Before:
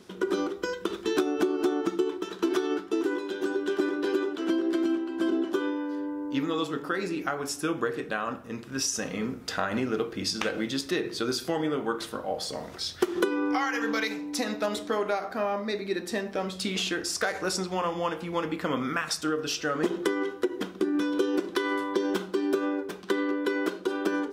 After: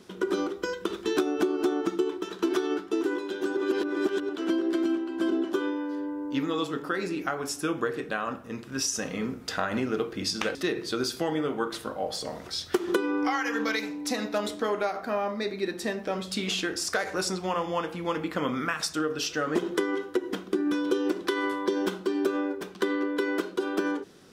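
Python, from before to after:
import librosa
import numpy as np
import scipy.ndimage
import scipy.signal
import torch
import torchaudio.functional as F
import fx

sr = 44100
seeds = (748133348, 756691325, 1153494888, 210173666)

y = fx.edit(x, sr, fx.reverse_span(start_s=3.57, length_s=0.72),
    fx.cut(start_s=10.55, length_s=0.28), tone=tone)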